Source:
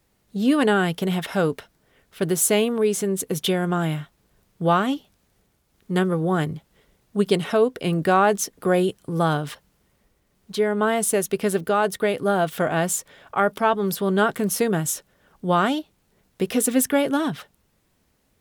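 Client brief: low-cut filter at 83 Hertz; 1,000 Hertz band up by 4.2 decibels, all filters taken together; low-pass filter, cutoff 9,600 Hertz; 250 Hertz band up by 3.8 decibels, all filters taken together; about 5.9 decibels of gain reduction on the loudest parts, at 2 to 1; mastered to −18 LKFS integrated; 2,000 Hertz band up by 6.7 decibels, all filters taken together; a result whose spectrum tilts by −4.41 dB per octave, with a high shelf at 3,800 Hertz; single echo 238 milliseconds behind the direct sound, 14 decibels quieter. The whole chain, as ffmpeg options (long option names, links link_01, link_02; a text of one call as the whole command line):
ffmpeg -i in.wav -af "highpass=83,lowpass=9600,equalizer=frequency=250:width_type=o:gain=5,equalizer=frequency=1000:width_type=o:gain=3,equalizer=frequency=2000:width_type=o:gain=7,highshelf=frequency=3800:gain=4,acompressor=threshold=-20dB:ratio=2,aecho=1:1:238:0.2,volume=5dB" out.wav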